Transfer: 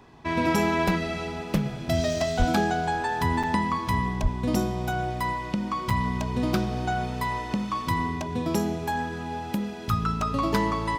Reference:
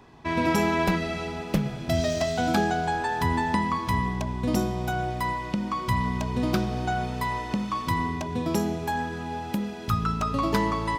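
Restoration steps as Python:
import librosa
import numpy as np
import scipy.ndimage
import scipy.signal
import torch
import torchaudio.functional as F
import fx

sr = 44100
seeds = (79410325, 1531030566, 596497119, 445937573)

y = fx.fix_declip(x, sr, threshold_db=-13.5)
y = fx.highpass(y, sr, hz=140.0, slope=24, at=(2.38, 2.5), fade=0.02)
y = fx.highpass(y, sr, hz=140.0, slope=24, at=(4.22, 4.34), fade=0.02)
y = fx.fix_interpolate(y, sr, at_s=(3.43, 5.9), length_ms=5.3)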